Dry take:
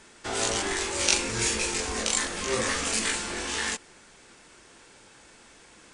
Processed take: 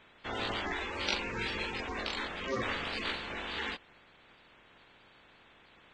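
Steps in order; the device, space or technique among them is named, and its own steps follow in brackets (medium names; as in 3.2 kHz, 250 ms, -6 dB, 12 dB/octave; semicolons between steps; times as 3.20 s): clip after many re-uploads (low-pass 4.1 kHz 24 dB/octave; coarse spectral quantiser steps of 30 dB); trim -5 dB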